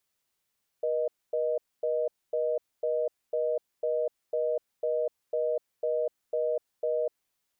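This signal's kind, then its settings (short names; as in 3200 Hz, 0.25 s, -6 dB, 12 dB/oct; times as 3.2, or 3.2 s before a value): call progress tone reorder tone, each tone -28 dBFS 6.32 s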